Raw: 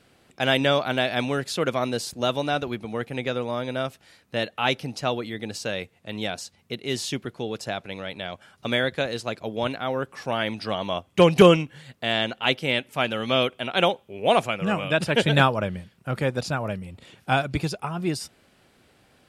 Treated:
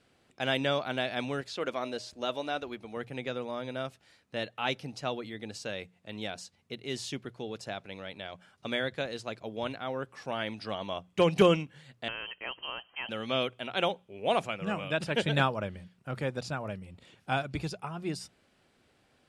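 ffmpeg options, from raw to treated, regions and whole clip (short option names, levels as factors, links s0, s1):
-filter_complex "[0:a]asettb=1/sr,asplit=3[s0][s1][s2];[s0]atrim=end=1.414[s3];[s1]atrim=start=1.41:end=2.97,asetpts=PTS-STARTPTS,afade=t=in:d=0.004:c=qsin,afade=t=out:st=1.556:d=0.004:c=qsin,bandreject=f=308:t=h:w=4,bandreject=f=616:t=h:w=4,bandreject=f=924:t=h:w=4,acrossover=split=6200[s4][s5];[s5]acompressor=threshold=0.00316:ratio=4:attack=1:release=60[s6];[s4][s6]amix=inputs=2:normalize=0,equalizer=f=140:w=1.5:g=-11[s7];[s2]atrim=start=2.966[s8];[s3][s7]acrossfade=d=0.004:c1=hsin:c2=qsin[s9];[s9][s8]acrossfade=d=0.004:c1=qsin:c2=hsin,asettb=1/sr,asplit=3[s10][s11][s12];[s10]atrim=end=12.084[s13];[s11]atrim=start=12.08:end=13.09,asetpts=PTS-STARTPTS,afade=t=in:d=0.004:c=qsin,afade=t=out:st=1.006:d=0.004:c=qsin,acompressor=threshold=0.0398:ratio=2:attack=3.2:release=140:knee=1:detection=peak,lowpass=f=2800:t=q:w=0.5098,lowpass=f=2800:t=q:w=0.6013,lowpass=f=2800:t=q:w=0.9,lowpass=f=2800:t=q:w=2.563,afreqshift=-3300[s14];[s12]atrim=start=13.086[s15];[s13][s14]acrossfade=d=0.004:c1=hsin:c2=qsin[s16];[s16][s15]acrossfade=d=0.004:c1=qsin:c2=hsin,lowpass=10000,bandreject=f=60:t=h:w=6,bandreject=f=120:t=h:w=6,bandreject=f=180:t=h:w=6,volume=0.398"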